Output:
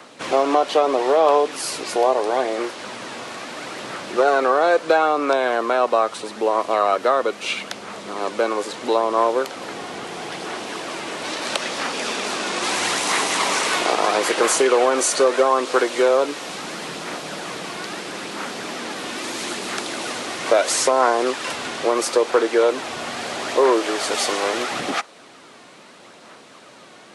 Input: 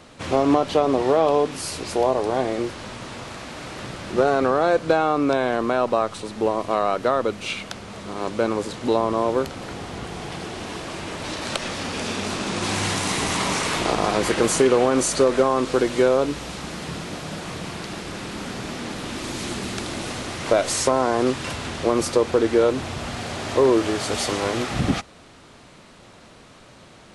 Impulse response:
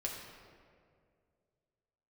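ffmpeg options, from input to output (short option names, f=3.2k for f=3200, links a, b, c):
-filter_complex "[0:a]highpass=260,acrossover=split=340|1100|2100[a][b][c][d];[a]acompressor=threshold=-41dB:ratio=6[e];[c]aphaser=in_gain=1:out_gain=1:delay=2.8:decay=0.67:speed=0.76:type=sinusoidal[f];[e][b][f][d]amix=inputs=4:normalize=0,volume=3.5dB"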